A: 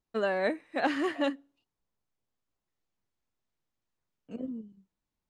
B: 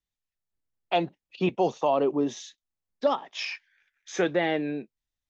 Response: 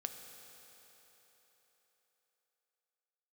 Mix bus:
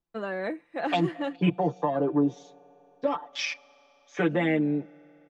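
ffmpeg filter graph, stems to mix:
-filter_complex "[0:a]highshelf=f=3k:g=-9.5,volume=-1.5dB[a];[1:a]afwtdn=0.0158,aecho=1:1:6.8:0.96,volume=-1.5dB,asplit=2[b][c];[c]volume=-17.5dB[d];[2:a]atrim=start_sample=2205[e];[d][e]afir=irnorm=-1:irlink=0[f];[a][b][f]amix=inputs=3:normalize=0,aecho=1:1:5.9:0.48,acrossover=split=330|3000[g][h][i];[h]acompressor=threshold=-25dB:ratio=6[j];[g][j][i]amix=inputs=3:normalize=0"

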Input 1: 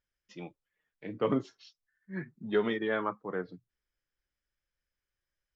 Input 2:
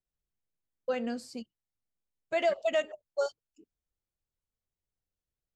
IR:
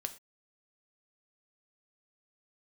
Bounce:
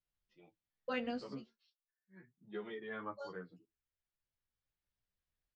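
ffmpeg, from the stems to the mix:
-filter_complex "[0:a]flanger=delay=5.6:depth=9.1:regen=39:speed=0.39:shape=triangular,volume=-5.5dB,afade=t=in:st=2.28:d=0.7:silence=0.421697,asplit=2[a][b];[1:a]equalizer=f=400:t=o:w=1.4:g=-4.5,volume=2dB,asplit=3[c][d][e];[c]atrim=end=1.53,asetpts=PTS-STARTPTS,afade=t=out:st=1.526:d=0.004:c=hsin[f];[d]atrim=start=1.53:end=3.03,asetpts=PTS-STARTPTS,volume=0[g];[e]atrim=start=3.03,asetpts=PTS-STARTPTS,afade=t=in:d=0.004:c=hsin[h];[f][g][h]concat=n=3:v=0:a=1,asplit=2[i][j];[j]volume=-21.5dB[k];[b]apad=whole_len=245078[l];[i][l]sidechaincompress=threshold=-52dB:ratio=6:attack=34:release=1240[m];[2:a]atrim=start_sample=2205[n];[k][n]afir=irnorm=-1:irlink=0[o];[a][m][o]amix=inputs=3:normalize=0,lowpass=f=4.9k:w=0.5412,lowpass=f=4.9k:w=1.3066,asplit=2[p][q];[q]adelay=11.8,afreqshift=0.77[r];[p][r]amix=inputs=2:normalize=1"

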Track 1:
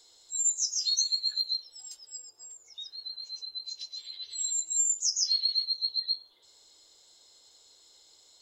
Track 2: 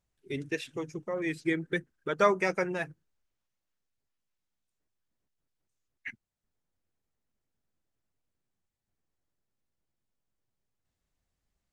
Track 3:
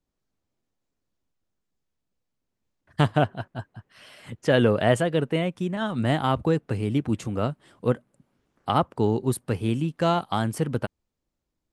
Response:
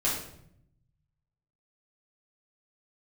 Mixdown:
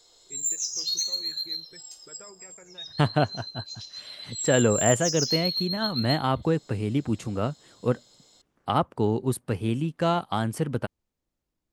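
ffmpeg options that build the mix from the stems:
-filter_complex "[0:a]highshelf=f=2.1k:g=-6,asoftclip=type=tanh:threshold=-25dB,volume=3dB,asplit=2[a][b];[b]volume=-11dB[c];[1:a]alimiter=level_in=0.5dB:limit=-24dB:level=0:latency=1:release=190,volume=-0.5dB,volume=-15.5dB[d];[2:a]volume=-1.5dB[e];[3:a]atrim=start_sample=2205[f];[c][f]afir=irnorm=-1:irlink=0[g];[a][d][e][g]amix=inputs=4:normalize=0"

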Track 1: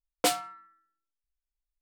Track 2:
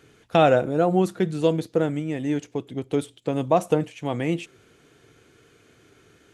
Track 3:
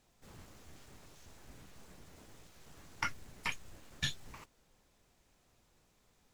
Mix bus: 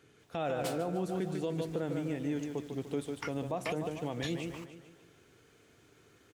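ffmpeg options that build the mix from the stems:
-filter_complex "[0:a]adelay=400,volume=-10dB,asplit=2[a][b];[b]volume=-12.5dB[c];[1:a]volume=-8dB,asplit=2[d][e];[e]volume=-8dB[f];[2:a]adelay=200,volume=0.5dB[g];[c][f]amix=inputs=2:normalize=0,aecho=0:1:148|296|444|592|740|888|1036:1|0.48|0.23|0.111|0.0531|0.0255|0.0122[h];[a][d][g][h]amix=inputs=4:normalize=0,highpass=59,alimiter=level_in=0.5dB:limit=-24dB:level=0:latency=1:release=129,volume=-0.5dB"

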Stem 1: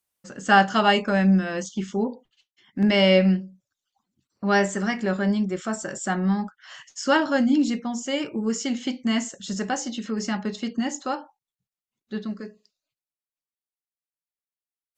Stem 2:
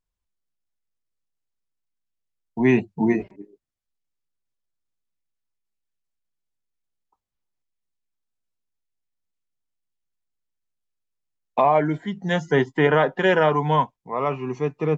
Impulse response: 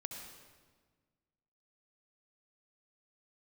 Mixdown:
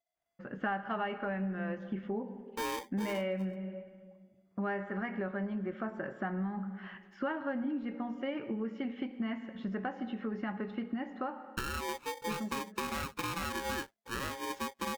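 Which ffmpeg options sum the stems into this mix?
-filter_complex "[0:a]asoftclip=type=hard:threshold=-9.5dB,adynamicequalizer=threshold=0.0224:dfrequency=210:dqfactor=2.4:tfrequency=210:tqfactor=2.4:attack=5:release=100:ratio=0.375:range=2.5:mode=cutabove:tftype=bell,lowpass=f=2.3k:w=0.5412,lowpass=f=2.3k:w=1.3066,adelay=150,volume=-6dB,asplit=2[a][b];[b]volume=-6.5dB[c];[1:a]acrossover=split=120[d][e];[e]acompressor=threshold=-20dB:ratio=6[f];[d][f]amix=inputs=2:normalize=0,aeval=exprs='val(0)*sgn(sin(2*PI*680*n/s))':c=same,volume=-8.5dB[g];[2:a]atrim=start_sample=2205[h];[c][h]afir=irnorm=-1:irlink=0[i];[a][g][i]amix=inputs=3:normalize=0,acompressor=threshold=-33dB:ratio=5"

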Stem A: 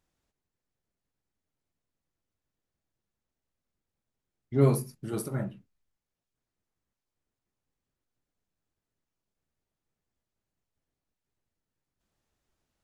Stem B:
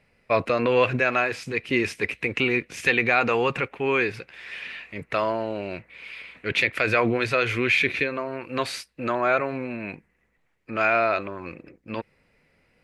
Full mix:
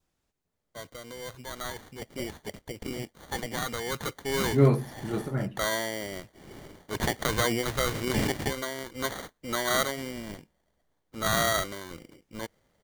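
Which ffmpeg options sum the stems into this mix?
-filter_complex "[0:a]acrossover=split=3200[a][b];[b]acompressor=threshold=-52dB:ratio=4:attack=1:release=60[c];[a][c]amix=inputs=2:normalize=0,volume=2dB[d];[1:a]acrusher=samples=17:mix=1:aa=0.000001,adynamicequalizer=threshold=0.0141:dfrequency=2300:dqfactor=0.7:tfrequency=2300:tqfactor=0.7:attack=5:release=100:ratio=0.375:range=2.5:mode=boostabove:tftype=highshelf,adelay=450,volume=-6dB,afade=t=in:st=1.38:d=0.4:silence=0.375837,afade=t=in:st=3.84:d=0.27:silence=0.446684[e];[d][e]amix=inputs=2:normalize=0,adynamicequalizer=threshold=0.00355:dfrequency=1900:dqfactor=3.5:tfrequency=1900:tqfactor=3.5:attack=5:release=100:ratio=0.375:range=2.5:mode=boostabove:tftype=bell"

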